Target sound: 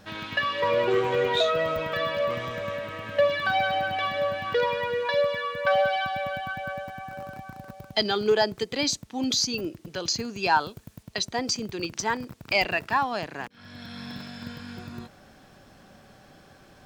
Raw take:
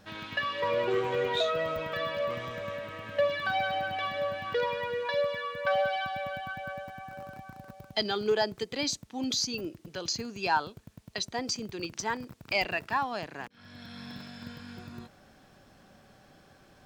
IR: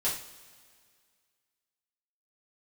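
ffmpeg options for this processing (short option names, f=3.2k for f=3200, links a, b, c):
-filter_complex "[0:a]asettb=1/sr,asplit=3[a][b][c];[a]atrim=end=10.604[d];[b]atrim=start=10.6:end=11.03,asetpts=PTS-STARTPTS,afade=t=in:d=0.004:c=qsin,afade=t=out:st=0.426:d=0.004:c=qsin,highshelf=f=7.8k:g=7.5[e];[c]atrim=start=11.026[f];[d][e]acrossfade=d=0.004:c1=hsin:c2=qsin[g];[g][f]acrossfade=d=0.004:c1=qsin:c2=hsin,volume=5dB"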